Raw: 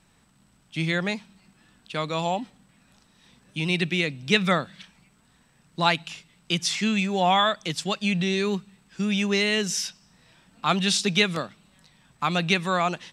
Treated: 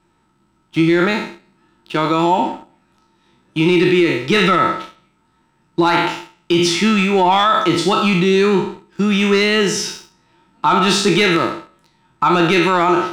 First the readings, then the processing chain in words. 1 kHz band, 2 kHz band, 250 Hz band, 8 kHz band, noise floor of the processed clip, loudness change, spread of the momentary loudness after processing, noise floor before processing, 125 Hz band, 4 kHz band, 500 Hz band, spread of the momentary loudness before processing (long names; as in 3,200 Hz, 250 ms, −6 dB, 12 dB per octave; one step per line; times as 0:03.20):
+11.0 dB, +7.5 dB, +11.5 dB, +5.0 dB, −61 dBFS, +9.5 dB, 12 LU, −62 dBFS, +7.5 dB, +6.0 dB, +12.0 dB, 13 LU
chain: peak hold with a decay on every bin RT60 0.65 s
leveller curve on the samples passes 2
high-shelf EQ 5,100 Hz −8.5 dB
hollow resonant body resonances 340/910/1,300 Hz, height 17 dB, ringing for 90 ms
boost into a limiter +5 dB
level −4.5 dB